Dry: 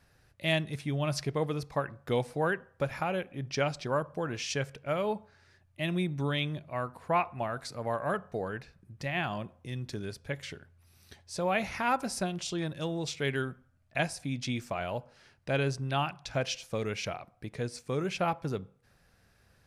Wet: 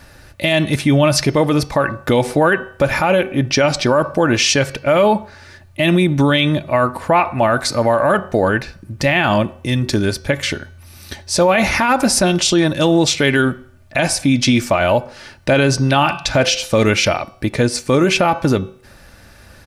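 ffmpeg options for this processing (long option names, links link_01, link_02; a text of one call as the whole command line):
ffmpeg -i in.wav -filter_complex "[0:a]asettb=1/sr,asplit=3[link_01][link_02][link_03];[link_01]atrim=end=15.684[link_04];[link_02]atrim=start=15.68:end=17.09,asetpts=PTS-STARTPTS,afade=type=in:duration=0.004:curve=qsin,afade=type=out:start_time=1.406:duration=0.004:curve=qsin,bandreject=frequency=171.4:width_type=h:width=4,bandreject=frequency=342.8:width_type=h:width=4,bandreject=frequency=514.2:width_type=h:width=4,bandreject=frequency=685.6:width_type=h:width=4,bandreject=frequency=857:width_type=h:width=4,bandreject=frequency=1028.4:width_type=h:width=4,bandreject=frequency=1199.8:width_type=h:width=4,bandreject=frequency=1371.2:width_type=h:width=4,bandreject=frequency=1542.6:width_type=h:width=4,bandreject=frequency=1714:width_type=h:width=4,bandreject=frequency=1885.4:width_type=h:width=4,bandreject=frequency=2056.8:width_type=h:width=4,bandreject=frequency=2228.2:width_type=h:width=4,bandreject=frequency=2399.6:width_type=h:width=4,bandreject=frequency=2571:width_type=h:width=4,bandreject=frequency=2742.4:width_type=h:width=4,bandreject=frequency=2913.8:width_type=h:width=4,bandreject=frequency=3085.2:width_type=h:width=4,bandreject=frequency=3256.6:width_type=h:width=4,bandreject=frequency=3428:width_type=h:width=4,bandreject=frequency=3599.4:width_type=h:width=4,bandreject=frequency=3770.8:width_type=h:width=4,bandreject=frequency=3942.2:width_type=h:width=4,bandreject=frequency=4113.6:width_type=h:width=4,bandreject=frequency=4285:width_type=h:width=4,bandreject=frequency=4456.4:width_type=h:width=4,bandreject=frequency=4627.8:width_type=h:width=4,bandreject=frequency=4799.2:width_type=h:width=4,bandreject=frequency=4970.6:width_type=h:width=4,bandreject=frequency=5142:width_type=h:width=4[link_05];[link_03]atrim=start=17.086[link_06];[link_04][link_05]acrossfade=duration=0.004:curve1=hsin:curve2=qsin[link_07];[link_07][link_06]acrossfade=duration=0.004:curve1=qsin:curve2=hsin,aecho=1:1:3.4:0.39,bandreject=frequency=378.2:width_type=h:width=4,bandreject=frequency=756.4:width_type=h:width=4,bandreject=frequency=1134.6:width_type=h:width=4,bandreject=frequency=1512.8:width_type=h:width=4,bandreject=frequency=1891:width_type=h:width=4,bandreject=frequency=2269.2:width_type=h:width=4,bandreject=frequency=2647.4:width_type=h:width=4,bandreject=frequency=3025.6:width_type=h:width=4,bandreject=frequency=3403.8:width_type=h:width=4,bandreject=frequency=3782:width_type=h:width=4,bandreject=frequency=4160.2:width_type=h:width=4,bandreject=frequency=4538.4:width_type=h:width=4,bandreject=frequency=4916.6:width_type=h:width=4,bandreject=frequency=5294.8:width_type=h:width=4,bandreject=frequency=5673:width_type=h:width=4,bandreject=frequency=6051.2:width_type=h:width=4,bandreject=frequency=6429.4:width_type=h:width=4,alimiter=level_in=25.5dB:limit=-1dB:release=50:level=0:latency=1,volume=-4dB" out.wav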